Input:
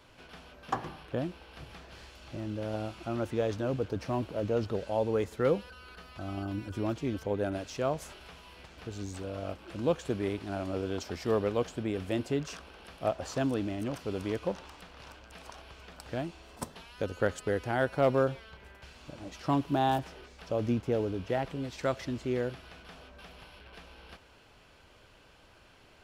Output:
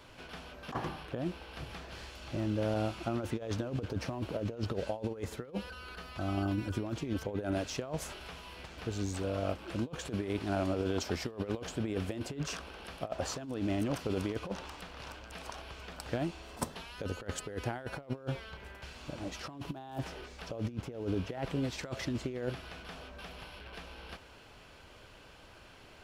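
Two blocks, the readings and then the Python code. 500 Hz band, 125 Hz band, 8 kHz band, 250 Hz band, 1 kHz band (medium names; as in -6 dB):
-6.5 dB, -1.0 dB, +3.0 dB, -2.0 dB, -6.0 dB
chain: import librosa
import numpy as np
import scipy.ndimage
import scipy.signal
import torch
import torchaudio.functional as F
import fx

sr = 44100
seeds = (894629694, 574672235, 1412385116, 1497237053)

y = fx.over_compress(x, sr, threshold_db=-34.0, ratio=-0.5)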